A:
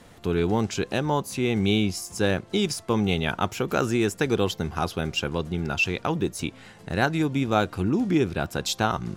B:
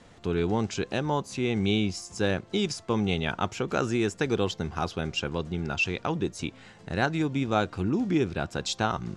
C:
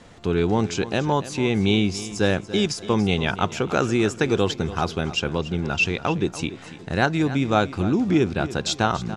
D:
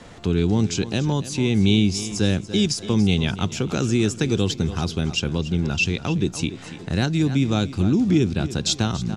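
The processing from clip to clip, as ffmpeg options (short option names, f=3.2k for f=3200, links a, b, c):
-af "lowpass=f=8.2k:w=0.5412,lowpass=f=8.2k:w=1.3066,volume=-3dB"
-af "aecho=1:1:286|572|858:0.178|0.064|0.023,volume=5.5dB"
-filter_complex "[0:a]acrossover=split=310|3000[a][b][c];[b]acompressor=threshold=-46dB:ratio=2[d];[a][d][c]amix=inputs=3:normalize=0,volume=4.5dB"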